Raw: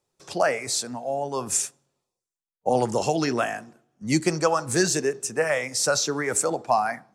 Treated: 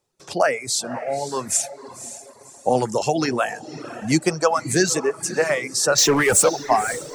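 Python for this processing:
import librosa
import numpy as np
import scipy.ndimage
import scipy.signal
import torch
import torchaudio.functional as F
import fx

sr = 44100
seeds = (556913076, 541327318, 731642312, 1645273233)

y = fx.power_curve(x, sr, exponent=0.5, at=(5.98, 6.49))
y = fx.echo_diffused(y, sr, ms=534, feedback_pct=41, wet_db=-11.5)
y = fx.dereverb_blind(y, sr, rt60_s=0.92)
y = y * 10.0 ** (3.5 / 20.0)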